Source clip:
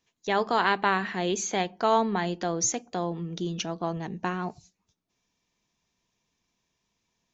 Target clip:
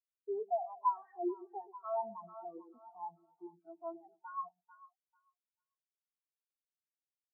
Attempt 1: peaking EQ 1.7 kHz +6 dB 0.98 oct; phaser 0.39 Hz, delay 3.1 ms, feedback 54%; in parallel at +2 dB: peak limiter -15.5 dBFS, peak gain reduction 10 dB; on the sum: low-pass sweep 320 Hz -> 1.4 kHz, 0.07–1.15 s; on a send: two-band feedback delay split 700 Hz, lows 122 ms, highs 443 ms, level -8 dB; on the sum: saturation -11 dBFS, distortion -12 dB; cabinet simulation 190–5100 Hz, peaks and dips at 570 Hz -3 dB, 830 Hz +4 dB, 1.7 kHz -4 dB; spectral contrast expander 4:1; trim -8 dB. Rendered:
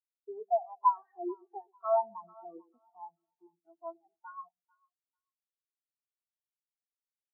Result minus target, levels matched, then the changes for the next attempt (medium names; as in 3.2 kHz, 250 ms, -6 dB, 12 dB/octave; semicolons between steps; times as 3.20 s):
saturation: distortion -7 dB
change: saturation -20.5 dBFS, distortion -5 dB